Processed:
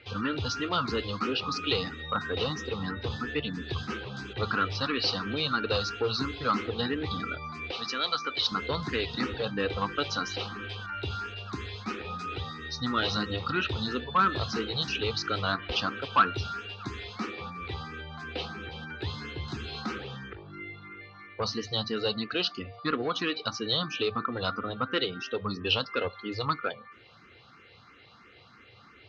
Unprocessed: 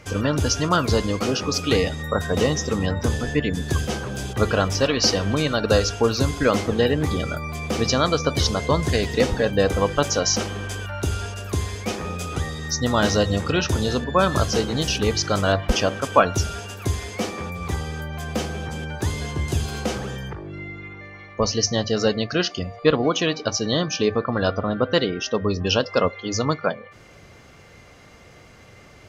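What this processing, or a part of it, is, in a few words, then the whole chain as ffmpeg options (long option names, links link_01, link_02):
barber-pole phaser into a guitar amplifier: -filter_complex "[0:a]asplit=2[link_01][link_02];[link_02]afreqshift=3[link_03];[link_01][link_03]amix=inputs=2:normalize=1,asoftclip=type=tanh:threshold=-13.5dB,highpass=97,equalizer=frequency=160:width_type=q:width=4:gain=-5,equalizer=frequency=610:width_type=q:width=4:gain=-9,equalizer=frequency=1300:width_type=q:width=4:gain=9,equalizer=frequency=2700:width_type=q:width=4:gain=5,equalizer=frequency=4000:width_type=q:width=4:gain=10,lowpass=frequency=4500:width=0.5412,lowpass=frequency=4500:width=1.3066,asettb=1/sr,asplit=3[link_04][link_05][link_06];[link_04]atrim=end=7.714[link_07];[link_05]atrim=start=7.71:end=8.52,asetpts=PTS-STARTPTS,afade=type=in:duration=0.004:curve=qsin,afade=type=out:start_time=0.806:duration=0.004:curve=qsin,highpass=frequency=730:poles=1[link_08];[link_06]atrim=start=8.516[link_09];[link_07][link_08]acrossfade=duration=0.004:curve1=hsin:curve2=qsin[link_10];[link_10][link_09]acrossfade=duration=0.004:curve1=qsin:curve2=hsin,volume=-5dB"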